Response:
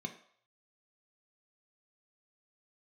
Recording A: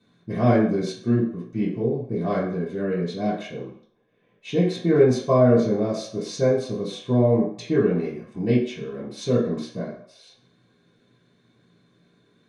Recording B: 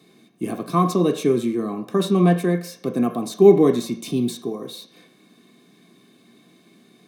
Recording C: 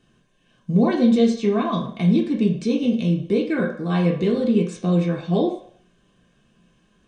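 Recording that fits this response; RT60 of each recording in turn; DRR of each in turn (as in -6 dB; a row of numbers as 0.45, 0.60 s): B; 0.60, 0.60, 0.60 s; -10.5, 4.5, -2.0 dB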